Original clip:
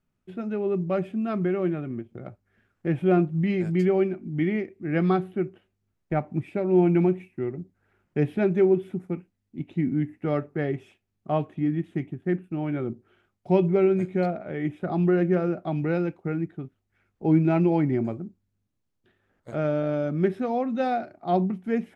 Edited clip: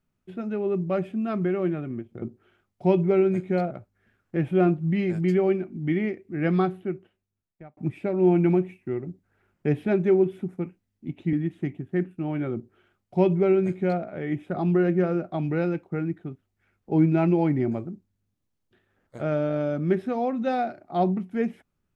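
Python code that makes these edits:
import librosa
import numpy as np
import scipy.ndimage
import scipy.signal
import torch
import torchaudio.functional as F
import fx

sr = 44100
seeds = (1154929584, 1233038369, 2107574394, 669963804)

y = fx.edit(x, sr, fx.fade_out_span(start_s=5.07, length_s=1.21),
    fx.cut(start_s=9.84, length_s=1.82),
    fx.duplicate(start_s=12.87, length_s=1.49, to_s=2.22), tone=tone)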